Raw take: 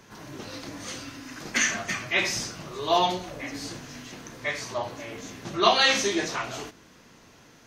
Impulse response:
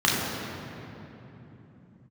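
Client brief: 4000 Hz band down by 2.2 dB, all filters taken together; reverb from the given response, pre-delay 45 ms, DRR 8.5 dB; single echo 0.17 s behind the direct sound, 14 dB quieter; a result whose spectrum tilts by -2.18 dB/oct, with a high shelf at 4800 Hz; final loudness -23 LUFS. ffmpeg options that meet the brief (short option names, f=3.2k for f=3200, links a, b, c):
-filter_complex "[0:a]equalizer=f=4k:t=o:g=-6.5,highshelf=f=4.8k:g=8,aecho=1:1:170:0.2,asplit=2[a][b];[1:a]atrim=start_sample=2205,adelay=45[c];[b][c]afir=irnorm=-1:irlink=0,volume=-26.5dB[d];[a][d]amix=inputs=2:normalize=0,volume=3dB"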